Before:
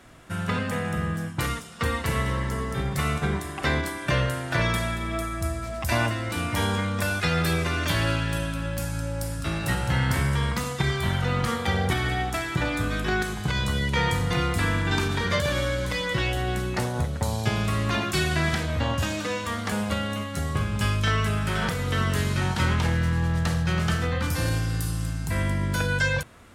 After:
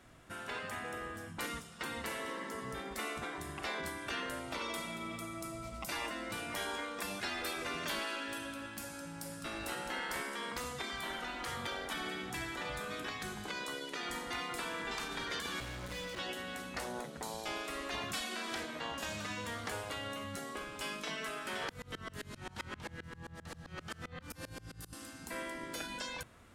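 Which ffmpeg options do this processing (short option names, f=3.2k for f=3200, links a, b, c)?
-filter_complex "[0:a]asettb=1/sr,asplit=3[a][b][c];[a]atrim=end=4.394[d];[b]atrim=start=4.39:end=5.92,asetpts=PTS-STARTPTS,afade=t=in:d=0.004:c=qsin,afade=t=out:st=1.526:d=0.004:c=qsin,asuperstop=centerf=1700:order=4:qfactor=5.6[e];[c]atrim=start=5.916[f];[d][e]acrossfade=d=0.004:c1=hsin:c2=qsin[g];[g][f]acrossfade=d=0.004:c1=qsin:c2=hsin,asettb=1/sr,asplit=3[h][i][j];[h]atrim=end=15.604[k];[i]atrim=start=15.6:end=16.19,asetpts=PTS-STARTPTS,afade=t=in:d=0.004:c=qsin,afade=t=out:st=0.586:d=0.004:c=qsin,asoftclip=type=hard:threshold=-30.5dB[l];[j]atrim=start=16.186[m];[k][l]acrossfade=d=0.004:c1=hsin:c2=qsin[n];[n][m]acrossfade=d=0.004:c1=qsin:c2=hsin,asettb=1/sr,asplit=3[o][p][q];[o]atrim=end=21.694[r];[p]atrim=start=21.69:end=24.93,asetpts=PTS-STARTPTS,afade=t=in:d=0.004:c=qsin,afade=t=out:st=3.236:d=0.004:c=qsin,aeval=exprs='val(0)*pow(10,-30*if(lt(mod(-7.6*n/s,1),2*abs(-7.6)/1000),1-mod(-7.6*n/s,1)/(2*abs(-7.6)/1000),(mod(-7.6*n/s,1)-2*abs(-7.6)/1000)/(1-2*abs(-7.6)/1000))/20)':c=same[s];[q]atrim=start=24.926[t];[r][s]acrossfade=d=0.004:c1=hsin:c2=qsin[u];[u][t]acrossfade=d=0.004:c1=qsin:c2=hsin,afftfilt=real='re*lt(hypot(re,im),0.178)':imag='im*lt(hypot(re,im),0.178)':win_size=1024:overlap=0.75,volume=-9dB"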